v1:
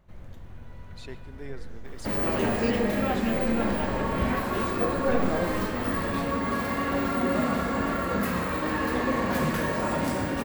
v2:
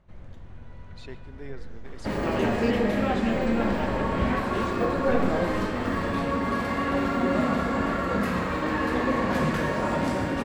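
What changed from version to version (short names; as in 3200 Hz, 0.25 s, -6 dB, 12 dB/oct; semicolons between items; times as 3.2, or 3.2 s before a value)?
second sound: send +8.5 dB; master: add air absorption 57 m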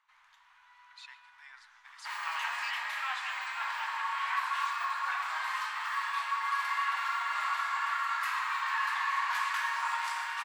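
master: add elliptic high-pass 960 Hz, stop band 50 dB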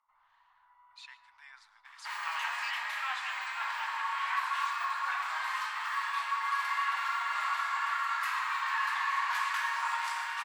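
first sound: add polynomial smoothing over 65 samples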